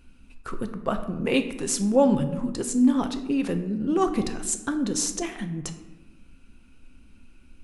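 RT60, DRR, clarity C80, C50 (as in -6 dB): 1.1 s, 7.0 dB, 12.5 dB, 10.5 dB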